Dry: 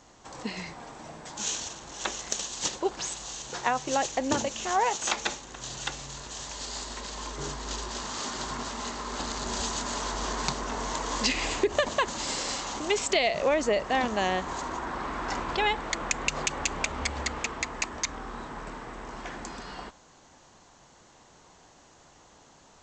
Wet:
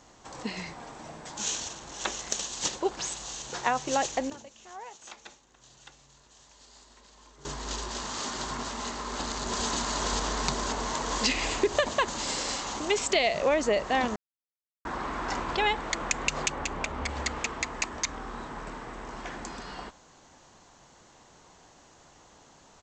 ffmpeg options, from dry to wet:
-filter_complex "[0:a]asplit=2[s0][s1];[s1]afade=t=in:st=8.97:d=0.01,afade=t=out:st=9.66:d=0.01,aecho=0:1:530|1060|1590|2120|2650|3180|3710|4240|4770|5300|5830|6360:0.891251|0.623876|0.436713|0.305699|0.213989|0.149793|0.104855|0.0733983|0.0513788|0.0359652|0.0251756|0.0176229[s2];[s0][s2]amix=inputs=2:normalize=0,asettb=1/sr,asplit=3[s3][s4][s5];[s3]atrim=end=16.504[s6];[s4]atrim=start=16.5:end=17.09,asetpts=PTS-STARTPTS,afade=t=in:d=0.004:c=qsin,afade=t=out:st=0.586:d=0.004:c=qsin,highshelf=f=2900:g=-8[s7];[s5]atrim=start=17.086[s8];[s6][s7]acrossfade=d=0.004:c1=hsin:c2=qsin[s9];[s9][s8]acrossfade=d=0.004:c1=qsin:c2=hsin,asplit=5[s10][s11][s12][s13][s14];[s10]atrim=end=4.3,asetpts=PTS-STARTPTS,afade=t=out:st=4.09:d=0.21:c=log:silence=0.125893[s15];[s11]atrim=start=4.3:end=7.45,asetpts=PTS-STARTPTS,volume=0.126[s16];[s12]atrim=start=7.45:end=14.16,asetpts=PTS-STARTPTS,afade=t=in:d=0.21:c=log:silence=0.125893,afade=t=out:st=6.706:d=0.004:c=hsin[s17];[s13]atrim=start=14.16:end=14.85,asetpts=PTS-STARTPTS,volume=0[s18];[s14]atrim=start=14.85,asetpts=PTS-STARTPTS,afade=t=in:d=0.004:c=hsin[s19];[s15][s16][s17][s18][s19]concat=n=5:v=0:a=1"

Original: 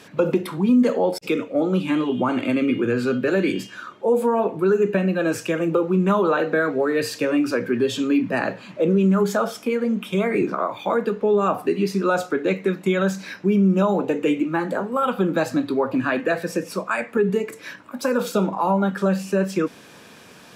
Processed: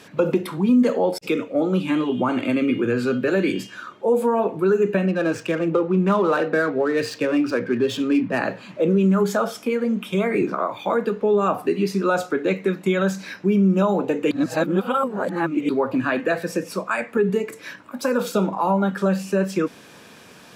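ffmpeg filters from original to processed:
-filter_complex "[0:a]asettb=1/sr,asplit=3[s0][s1][s2];[s0]atrim=end=5.064[s3];[s1]atrim=start=5.06:end=8.38,asetpts=PTS-STARTPTS,afade=t=in:d=0.004:c=qsin,afade=t=out:st=3.316:d=0.004:c=qsin,adynamicsmooth=sensitivity=6.5:basefreq=3000[s4];[s2]atrim=start=8.376[s5];[s3][s4]acrossfade=d=0.004:c1=hsin:c2=qsin[s6];[s6][s5]acrossfade=d=0.004:c1=qsin:c2=hsin,asplit=3[s7][s8][s9];[s7]atrim=end=14.312[s10];[s8]atrim=start=14.308:end=15.692,asetpts=PTS-STARTPTS,areverse[s11];[s9]atrim=start=15.688[s12];[s10][s11]acrossfade=d=0.004:c1=hsin:c2=hsin[s13];[s13][s12]acrossfade=d=0.004:c1=hsin:c2=hsin"

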